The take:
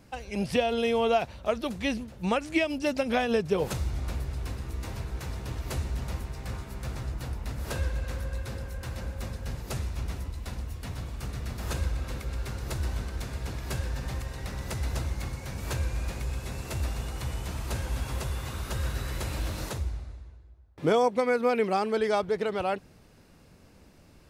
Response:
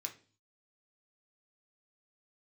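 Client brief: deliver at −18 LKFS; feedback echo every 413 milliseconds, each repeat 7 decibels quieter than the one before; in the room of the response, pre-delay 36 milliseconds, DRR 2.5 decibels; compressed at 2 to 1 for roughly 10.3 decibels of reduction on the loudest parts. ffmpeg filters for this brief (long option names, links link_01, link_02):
-filter_complex "[0:a]acompressor=threshold=-39dB:ratio=2,aecho=1:1:413|826|1239|1652|2065:0.447|0.201|0.0905|0.0407|0.0183,asplit=2[link_01][link_02];[1:a]atrim=start_sample=2205,adelay=36[link_03];[link_02][link_03]afir=irnorm=-1:irlink=0,volume=-0.5dB[link_04];[link_01][link_04]amix=inputs=2:normalize=0,volume=19dB"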